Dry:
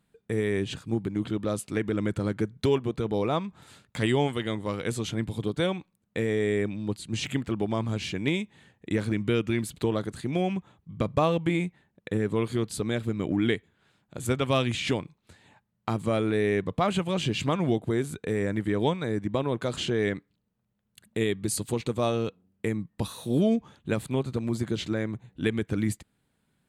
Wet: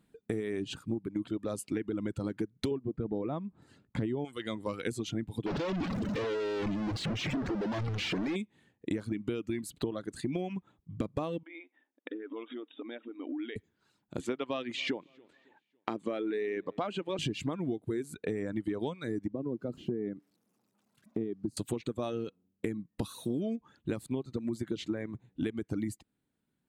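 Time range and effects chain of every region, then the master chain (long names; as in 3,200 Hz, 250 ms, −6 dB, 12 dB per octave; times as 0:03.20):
0:02.71–0:04.25: low-pass filter 1,300 Hz 6 dB per octave + low-shelf EQ 500 Hz +6 dB
0:05.46–0:08.36: sign of each sample alone + high-frequency loss of the air 160 metres
0:11.43–0:13.56: parametric band 390 Hz −7.5 dB 0.42 octaves + downward compressor 12 to 1, threshold −35 dBFS + linear-phase brick-wall band-pass 240–3,800 Hz
0:14.20–0:17.19: band-pass filter 290–4,400 Hz + repeating echo 278 ms, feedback 40%, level −23 dB
0:19.32–0:21.57: spike at every zero crossing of −31 dBFS + resonant band-pass 210 Hz, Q 0.87
whole clip: reverb reduction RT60 1.6 s; parametric band 300 Hz +8 dB 1 octave; downward compressor 10 to 1, threshold −30 dBFS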